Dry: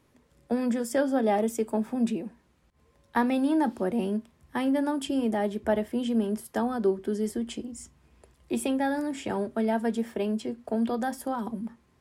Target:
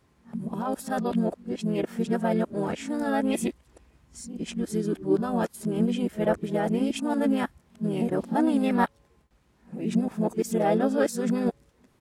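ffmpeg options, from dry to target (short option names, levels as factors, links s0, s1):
-filter_complex "[0:a]areverse,asplit=2[s0][s1];[s1]asetrate=35002,aresample=44100,atempo=1.25992,volume=0.631[s2];[s0][s2]amix=inputs=2:normalize=0"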